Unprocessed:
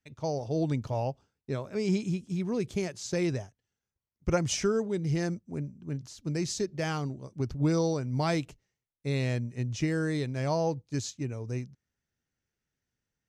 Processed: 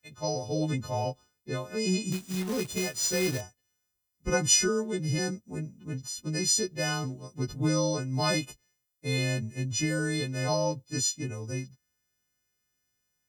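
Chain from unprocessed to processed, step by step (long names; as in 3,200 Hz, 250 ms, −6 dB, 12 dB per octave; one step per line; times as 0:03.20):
every partial snapped to a pitch grid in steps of 3 semitones
0:02.12–0:03.41: log-companded quantiser 4 bits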